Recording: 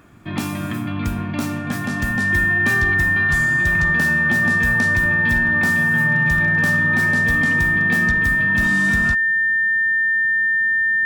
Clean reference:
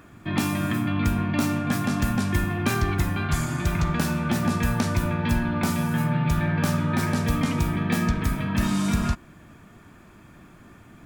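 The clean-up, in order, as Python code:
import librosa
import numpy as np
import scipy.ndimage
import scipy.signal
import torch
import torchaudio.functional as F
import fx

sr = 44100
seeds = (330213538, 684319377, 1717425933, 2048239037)

y = fx.fix_declip(x, sr, threshold_db=-10.0)
y = fx.notch(y, sr, hz=1800.0, q=30.0)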